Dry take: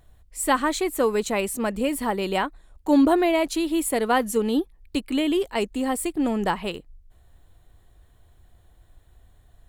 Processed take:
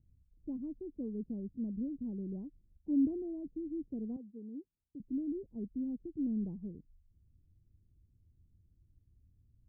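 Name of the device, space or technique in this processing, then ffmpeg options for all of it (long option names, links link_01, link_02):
the neighbour's flat through the wall: -filter_complex "[0:a]lowshelf=frequency=69:gain=-10,asettb=1/sr,asplit=3[link_01][link_02][link_03];[link_01]atrim=end=4.164[link_04];[link_02]atrim=start=4.16:end=5,asetpts=PTS-STARTPTS,afade=type=in:duration=0.004:curve=qsin,afade=type=out:start_time=0.836:duration=0.004:curve=qsin,highpass=frequency=840:poles=1[link_05];[link_03]atrim=start=4.996[link_06];[link_04][link_05]acrossfade=duration=0.004:curve1=hsin:curve2=qsin[link_07];[link_07][link_06]acrossfade=duration=0.004:curve1=qsin:curve2=hsin,lowpass=frequency=240:width=0.5412,lowpass=frequency=240:width=1.3066,equalizer=frequency=95:width_type=o:width=0.76:gain=5,equalizer=frequency=630:width_type=o:width=2.8:gain=5.5,volume=-8dB"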